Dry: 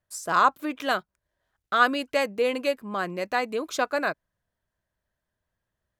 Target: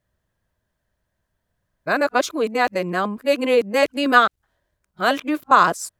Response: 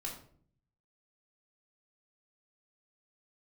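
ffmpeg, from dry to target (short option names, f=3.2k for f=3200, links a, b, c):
-af "areverse,lowshelf=f=470:g=3.5,volume=5.5dB"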